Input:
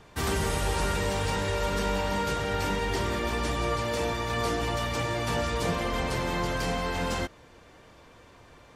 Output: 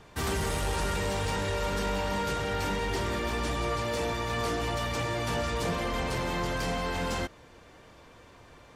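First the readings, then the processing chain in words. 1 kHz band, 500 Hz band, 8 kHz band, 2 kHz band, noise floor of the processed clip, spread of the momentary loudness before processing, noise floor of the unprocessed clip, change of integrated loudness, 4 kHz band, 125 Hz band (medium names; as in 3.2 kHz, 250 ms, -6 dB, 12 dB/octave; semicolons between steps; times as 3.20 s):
-2.0 dB, -2.0 dB, -1.5 dB, -1.5 dB, -54 dBFS, 2 LU, -54 dBFS, -2.0 dB, -1.5 dB, -2.0 dB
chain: saturation -23 dBFS, distortion -17 dB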